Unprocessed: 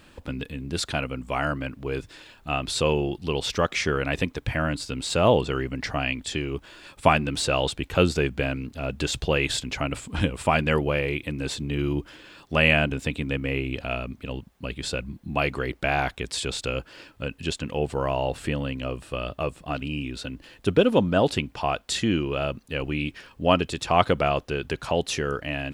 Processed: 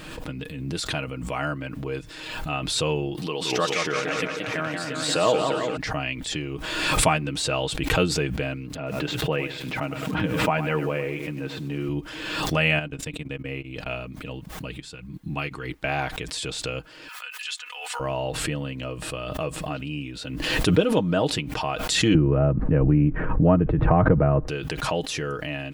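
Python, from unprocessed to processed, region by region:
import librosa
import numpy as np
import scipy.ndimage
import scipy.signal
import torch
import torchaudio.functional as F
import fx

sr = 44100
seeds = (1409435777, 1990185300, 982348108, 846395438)

y = fx.chain(x, sr, fx.bessel_highpass(hz=260.0, order=2),
    fx.peak_eq(hz=1100.0, db=4.5, octaves=0.2),
    fx.echo_warbled(ms=177, feedback_pct=62, rate_hz=2.8, cents=169, wet_db=-4.0), at=(3.17, 5.77))
y = fx.chain(y, sr, fx.bandpass_edges(low_hz=120.0, high_hz=2400.0),
    fx.echo_crushed(ms=102, feedback_pct=35, bits=7, wet_db=-11.0), at=(8.75, 11.89))
y = fx.chain(y, sr, fx.level_steps(step_db=14),
    fx.upward_expand(threshold_db=-41.0, expansion=2.5), at=(12.79, 13.86))
y = fx.chain(y, sr, fx.peak_eq(hz=580.0, db=-11.0, octaves=0.45),
    fx.upward_expand(threshold_db=-46.0, expansion=2.5), at=(14.8, 15.84))
y = fx.chain(y, sr, fx.highpass(hz=1100.0, slope=24),
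    fx.comb(ms=4.1, depth=0.69), at=(17.08, 18.0))
y = fx.chain(y, sr, fx.lowpass(hz=1800.0, slope=24),
    fx.tilt_eq(slope=-4.0),
    fx.band_squash(depth_pct=70), at=(22.14, 24.48))
y = y + 0.55 * np.pad(y, (int(6.4 * sr / 1000.0), 0))[:len(y)]
y = fx.pre_swell(y, sr, db_per_s=37.0)
y = y * 10.0 ** (-3.5 / 20.0)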